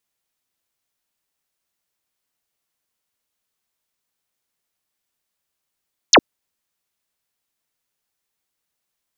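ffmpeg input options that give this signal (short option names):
-f lavfi -i "aevalsrc='0.501*clip(t/0.002,0,1)*clip((0.06-t)/0.002,0,1)*sin(2*PI*7600*0.06/log(210/7600)*(exp(log(210/7600)*t/0.06)-1))':d=0.06:s=44100"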